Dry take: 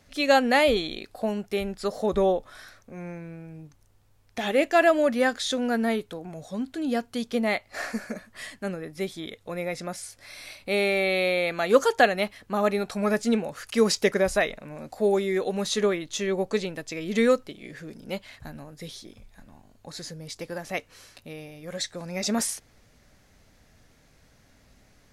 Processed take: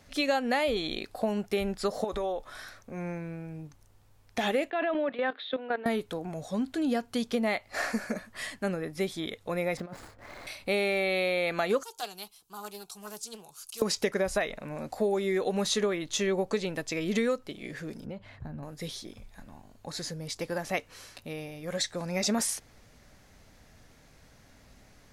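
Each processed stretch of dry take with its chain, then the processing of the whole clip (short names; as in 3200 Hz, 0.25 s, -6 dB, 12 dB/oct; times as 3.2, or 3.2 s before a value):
2.04–2.47 bell 150 Hz -11.5 dB 2.6 oct + compressor 5:1, threshold -30 dBFS
4.7–5.86 Chebyshev band-pass 270–3800 Hz, order 5 + level quantiser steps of 14 dB
9.77–10.47 median filter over 15 samples + high shelf 3600 Hz -8 dB + negative-ratio compressor -39 dBFS, ratio -0.5
11.83–13.82 pre-emphasis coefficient 0.9 + fixed phaser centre 370 Hz, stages 8 + Doppler distortion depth 0.31 ms
18.05–18.63 LPF 1000 Hz 6 dB/oct + bell 110 Hz +9.5 dB 1.2 oct + compressor 12:1, threshold -36 dBFS
whole clip: bell 920 Hz +2 dB; compressor 6:1, threshold -26 dBFS; gain +1.5 dB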